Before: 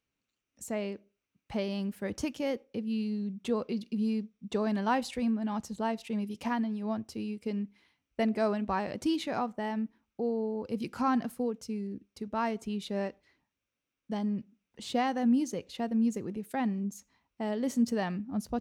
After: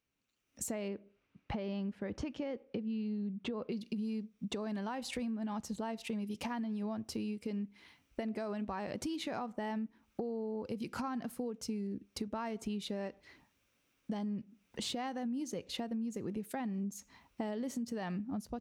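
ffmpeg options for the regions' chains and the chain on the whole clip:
ffmpeg -i in.wav -filter_complex "[0:a]asettb=1/sr,asplit=3[link_01][link_02][link_03];[link_01]atrim=end=0.884[link_04];[link_02]atrim=start=0.88:end=3.72,asetpts=PTS-STARTPTS,afade=type=in:duration=0.004:curve=qsin,afade=type=out:start_time=2.836:duration=0.004:curve=qsin,lowpass=4600,highshelf=frequency=3500:gain=-8.5[link_05];[link_03]atrim=start=3.716[link_06];[link_04][link_05]acrossfade=duration=0.004:curve1=hsin:curve2=qsin[link_07];[link_07][link_06]acrossfade=duration=0.004:curve1=qsin:curve2=hsin,dynaudnorm=framelen=360:gausssize=3:maxgain=13dB,alimiter=limit=-15dB:level=0:latency=1:release=171,acompressor=threshold=-36dB:ratio=5,volume=-1.5dB" out.wav

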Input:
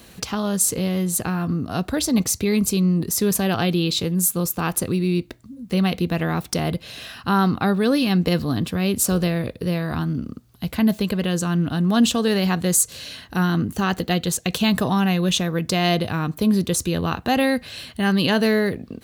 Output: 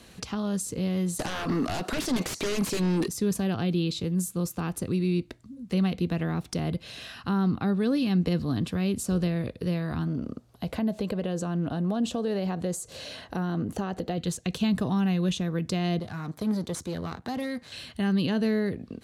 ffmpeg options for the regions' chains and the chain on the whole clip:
ffmpeg -i in.wav -filter_complex "[0:a]asettb=1/sr,asplit=3[link_01][link_02][link_03];[link_01]atrim=end=1.194[link_04];[link_02]atrim=start=1.19:end=3.08,asetpts=PTS-STARTPTS,afade=type=in:duration=0.004:curve=qsin,afade=type=out:start_time=1.886:duration=0.004:curve=qsin,highpass=600,acompressor=threshold=-33dB:ratio=2:attack=3.2:release=140:knee=1:detection=peak,aeval=exprs='0.178*sin(PI/2*8.91*val(0)/0.178)':channel_layout=same[link_05];[link_03]atrim=start=3.076[link_06];[link_04][link_05]acrossfade=duration=0.004:curve1=hsin:curve2=qsin[link_07];[link_07][link_06]acrossfade=duration=0.004:curve1=qsin:curve2=hsin,asettb=1/sr,asplit=3[link_08][link_09][link_10];[link_08]atrim=end=10.074[link_11];[link_09]atrim=start=10.07:end=14.18,asetpts=PTS-STARTPTS,afade=type=in:duration=0.004:curve=qsin,afade=type=out:start_time=4.106:duration=0.004:curve=qsin,equalizer=frequency=610:width=1:gain=11.5,acompressor=threshold=-23dB:ratio=2:attack=3.2:release=140:knee=1:detection=peak[link_12];[link_10]atrim=start=14.176[link_13];[link_11][link_12]acrossfade=duration=0.004:curve1=hsin:curve2=qsin[link_14];[link_14][link_13]acrossfade=duration=0.004:curve1=qsin:curve2=hsin,asettb=1/sr,asplit=3[link_15][link_16][link_17];[link_15]atrim=end=15.994[link_18];[link_16]atrim=start=15.99:end=17.72,asetpts=PTS-STARTPTS,afade=type=in:duration=0.004:curve=qsin,afade=type=out:start_time=1.726:duration=0.004:curve=qsin,aeval=exprs='if(lt(val(0),0),0.251*val(0),val(0))':channel_layout=same,highpass=95,equalizer=frequency=2700:width_type=o:width=0.32:gain=-8.5[link_19];[link_17]atrim=start=17.716[link_20];[link_18][link_19]acrossfade=duration=0.004:curve1=hsin:curve2=qsin[link_21];[link_21][link_20]acrossfade=duration=0.004:curve1=qsin:curve2=hsin,lowpass=10000,acrossover=split=400[link_22][link_23];[link_23]acompressor=threshold=-32dB:ratio=2.5[link_24];[link_22][link_24]amix=inputs=2:normalize=0,volume=-4.5dB" out.wav

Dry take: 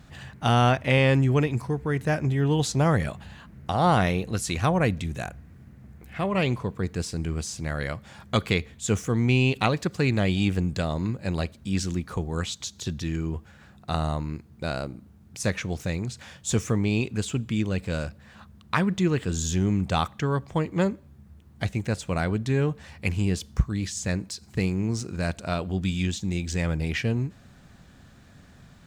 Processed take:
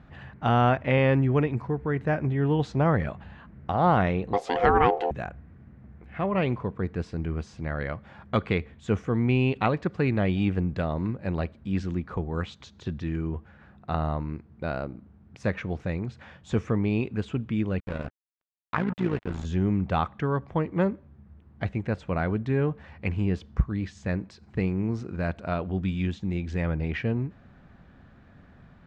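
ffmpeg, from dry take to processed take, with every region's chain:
ffmpeg -i in.wav -filter_complex "[0:a]asettb=1/sr,asplit=3[link_01][link_02][link_03];[link_01]atrim=end=4.334[link_04];[link_02]atrim=start=4.33:end=5.11,asetpts=PTS-STARTPTS,afade=type=in:duration=0.004:curve=qsin,afade=type=out:start_time=0.776:duration=0.004:curve=qsin,aeval=exprs='val(0)*sin(2*PI*610*n/s)':channel_layout=same,acontrast=51[link_05];[link_03]atrim=start=5.106[link_06];[link_04][link_05]acrossfade=duration=0.004:curve1=hsin:curve2=qsin[link_07];[link_07][link_06]acrossfade=duration=0.004:curve1=qsin:curve2=hsin,asettb=1/sr,asplit=3[link_08][link_09][link_10];[link_08]atrim=end=17.804[link_11];[link_09]atrim=start=17.8:end=19.45,asetpts=PTS-STARTPTS,afade=type=in:duration=0.004:curve=qsin,afade=type=out:start_time=1.646:duration=0.004:curve=qsin,acrusher=bits=4:mix=0:aa=0.5,tremolo=f=57:d=0.71[link_12];[link_10]atrim=start=19.446[link_13];[link_11][link_12]acrossfade=duration=0.004:curve1=hsin:curve2=qsin[link_14];[link_14][link_13]acrossfade=duration=0.004:curve1=qsin:curve2=hsin,lowpass=2000,equalizer=frequency=120:width=1.5:gain=-2.5" out.wav

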